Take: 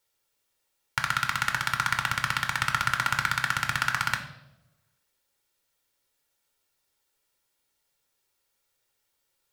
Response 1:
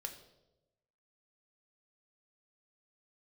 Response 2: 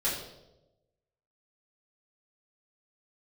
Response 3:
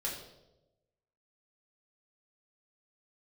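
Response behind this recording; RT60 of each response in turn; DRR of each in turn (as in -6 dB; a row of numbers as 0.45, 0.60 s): 1; 1.0, 1.0, 1.0 s; 4.5, -9.0, -4.5 dB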